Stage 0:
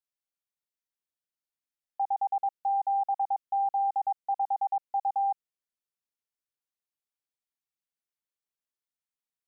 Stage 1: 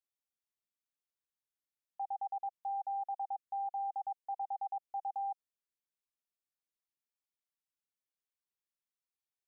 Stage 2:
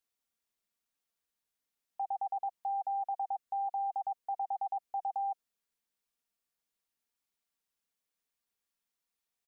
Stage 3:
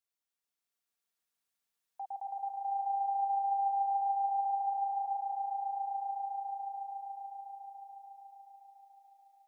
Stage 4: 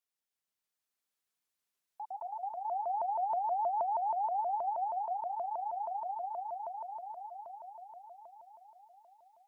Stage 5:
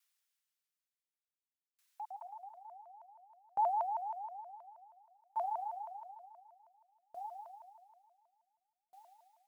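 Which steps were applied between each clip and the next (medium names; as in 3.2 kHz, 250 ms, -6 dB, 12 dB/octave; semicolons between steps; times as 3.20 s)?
dynamic bell 750 Hz, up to +4 dB, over -41 dBFS, Q 3.7; peak limiter -27 dBFS, peak gain reduction 7.5 dB; trim -6 dB
comb 4.3 ms, depth 36%; trim +5.5 dB
bass shelf 440 Hz -6 dB; on a send: echo with a slow build-up 144 ms, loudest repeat 5, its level -4 dB; on the sum: trim -4.5 dB
vibrato with a chosen wave saw up 6.3 Hz, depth 250 cents; trim -1 dB
high-pass 1.3 kHz 12 dB/octave; sawtooth tremolo in dB decaying 0.56 Hz, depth 39 dB; trim +12 dB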